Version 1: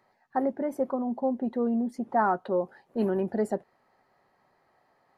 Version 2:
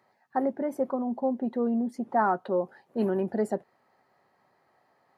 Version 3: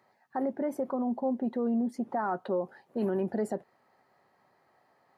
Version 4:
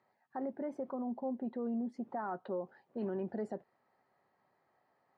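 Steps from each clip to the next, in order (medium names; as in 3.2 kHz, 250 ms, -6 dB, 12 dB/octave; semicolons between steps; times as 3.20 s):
high-pass 80 Hz
peak limiter -22 dBFS, peak gain reduction 9 dB
distance through air 120 m; trim -7.5 dB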